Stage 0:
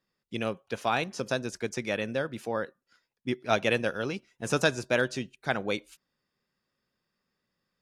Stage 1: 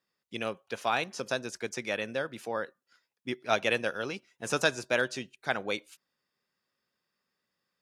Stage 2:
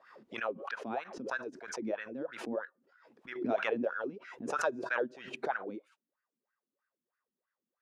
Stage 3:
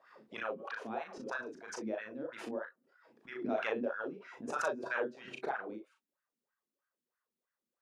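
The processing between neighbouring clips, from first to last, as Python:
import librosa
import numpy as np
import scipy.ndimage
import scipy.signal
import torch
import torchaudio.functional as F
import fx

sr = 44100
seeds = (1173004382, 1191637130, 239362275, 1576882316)

y1 = scipy.signal.sosfilt(scipy.signal.butter(2, 57.0, 'highpass', fs=sr, output='sos'), x)
y1 = fx.low_shelf(y1, sr, hz=320.0, db=-9.0)
y2 = fx.wah_lfo(y1, sr, hz=3.1, low_hz=230.0, high_hz=1600.0, q=6.3)
y2 = fx.pre_swell(y2, sr, db_per_s=68.0)
y2 = y2 * 10.0 ** (5.0 / 20.0)
y3 = fx.room_early_taps(y2, sr, ms=(37, 58), db=(-4.0, -17.5))
y3 = y3 * 10.0 ** (-4.0 / 20.0)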